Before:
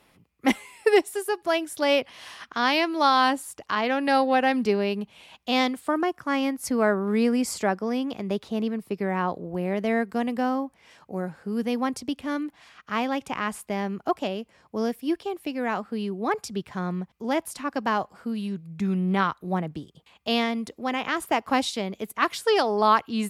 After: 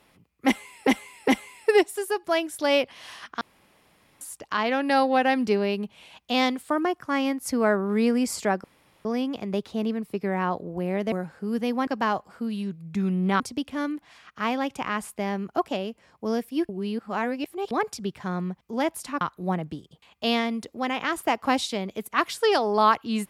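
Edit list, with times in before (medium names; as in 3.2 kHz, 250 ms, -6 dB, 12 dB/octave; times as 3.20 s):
0.46–0.87 s: loop, 3 plays
2.59–3.39 s: room tone
7.82 s: insert room tone 0.41 s
9.89–11.16 s: delete
15.20–16.22 s: reverse
17.72–19.25 s: move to 11.91 s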